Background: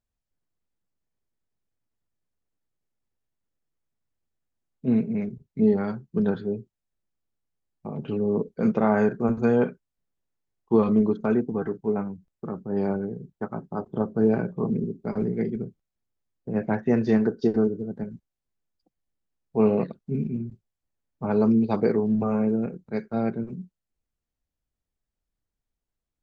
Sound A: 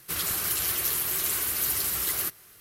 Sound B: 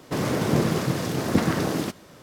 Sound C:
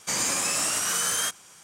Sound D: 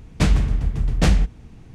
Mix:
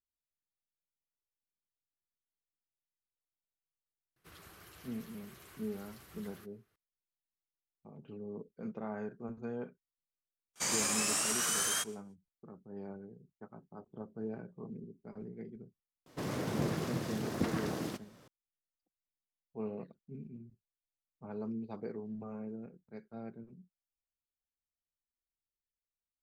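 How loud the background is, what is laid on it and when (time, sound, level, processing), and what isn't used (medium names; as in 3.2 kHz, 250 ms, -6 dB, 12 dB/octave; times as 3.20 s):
background -19.5 dB
4.16 s: add A -17.5 dB + low-pass 1.5 kHz 6 dB/octave
10.53 s: add C -6.5 dB, fades 0.05 s + gate with hold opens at -39 dBFS, closes at -45 dBFS
16.06 s: add B -12 dB
not used: D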